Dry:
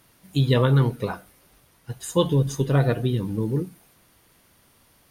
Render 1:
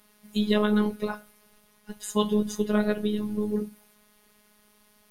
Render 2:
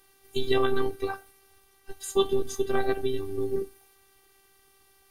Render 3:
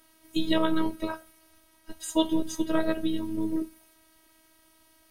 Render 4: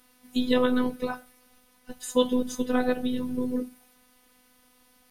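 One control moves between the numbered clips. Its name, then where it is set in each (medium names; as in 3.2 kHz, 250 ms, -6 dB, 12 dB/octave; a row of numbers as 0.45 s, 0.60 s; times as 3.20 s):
robot voice, frequency: 210 Hz, 390 Hz, 320 Hz, 250 Hz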